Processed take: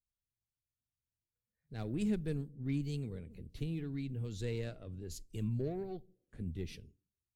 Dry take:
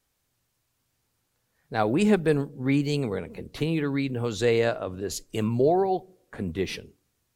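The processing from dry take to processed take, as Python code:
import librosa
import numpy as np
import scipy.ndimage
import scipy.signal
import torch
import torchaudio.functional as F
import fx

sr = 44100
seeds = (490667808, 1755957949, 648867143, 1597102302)

y = fx.cheby_harmonics(x, sr, harmonics=(8,), levels_db=(-29,), full_scale_db=-8.5)
y = fx.tone_stack(y, sr, knobs='10-0-1')
y = fx.noise_reduce_blind(y, sr, reduce_db=13)
y = y * 10.0 ** (5.5 / 20.0)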